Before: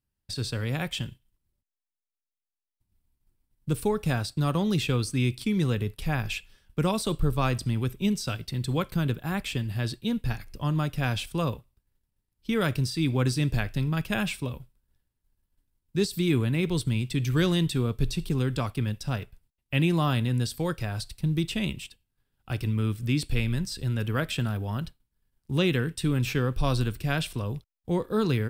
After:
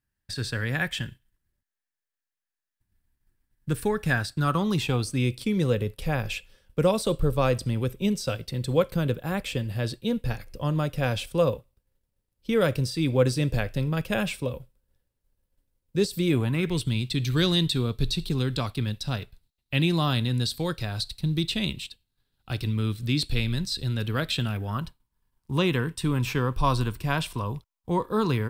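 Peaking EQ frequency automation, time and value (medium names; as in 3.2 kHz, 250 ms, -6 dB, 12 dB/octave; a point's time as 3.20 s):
peaking EQ +12.5 dB 0.38 oct
4.32 s 1.7 kHz
5.27 s 520 Hz
16.31 s 520 Hz
16.93 s 4 kHz
24.37 s 4 kHz
24.81 s 1 kHz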